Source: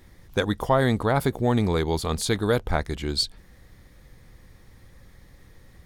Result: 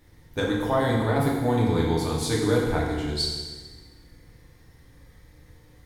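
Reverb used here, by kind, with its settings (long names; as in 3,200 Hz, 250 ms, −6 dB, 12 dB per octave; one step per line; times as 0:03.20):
feedback delay network reverb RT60 1.4 s, low-frequency decay 1.2×, high-frequency decay 0.95×, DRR −4.5 dB
level −7 dB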